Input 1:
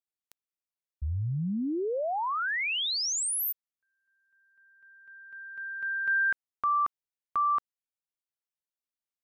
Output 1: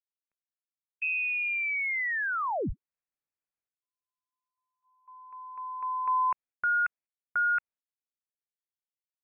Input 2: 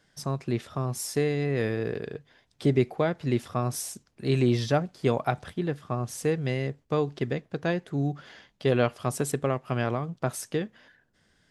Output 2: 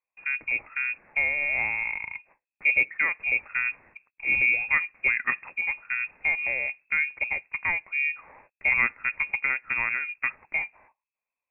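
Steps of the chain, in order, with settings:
noise gate −54 dBFS, range −26 dB
voice inversion scrambler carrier 2,600 Hz

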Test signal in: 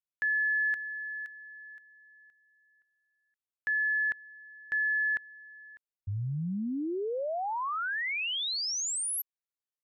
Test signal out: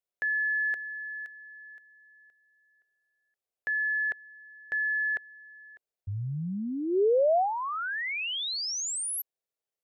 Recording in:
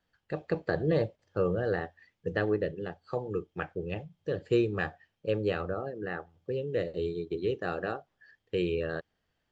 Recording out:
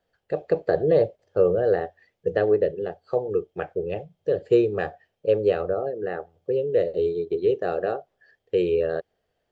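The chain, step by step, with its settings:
flat-topped bell 530 Hz +10 dB 1.2 octaves

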